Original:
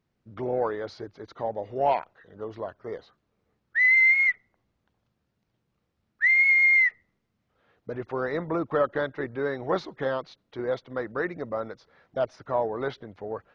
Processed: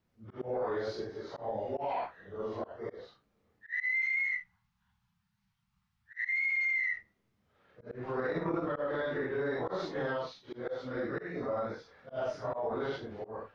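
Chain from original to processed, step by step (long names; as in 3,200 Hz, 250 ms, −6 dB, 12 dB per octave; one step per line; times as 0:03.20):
random phases in long frames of 200 ms
0:04.00–0:06.39: elliptic band-stop filter 200–860 Hz
0:10.84–0:11.43: dynamic equaliser 1,000 Hz, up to −8 dB, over −46 dBFS, Q 1
volume swells 187 ms
brickwall limiter −26 dBFS, peak gain reduction 15.5 dB
0:08.15–0:08.67: transient designer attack +12 dB, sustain −9 dB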